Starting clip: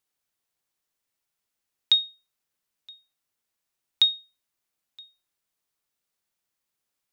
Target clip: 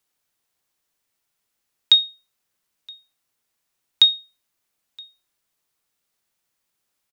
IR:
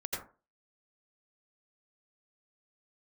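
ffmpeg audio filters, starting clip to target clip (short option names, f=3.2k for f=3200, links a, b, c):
-filter_complex "[0:a]acrossover=split=110|720|2500[a][b][c][d];[c]asplit=2[e][f];[f]adelay=25,volume=-12dB[g];[e][g]amix=inputs=2:normalize=0[h];[a][b][h][d]amix=inputs=4:normalize=0,volume=6dB"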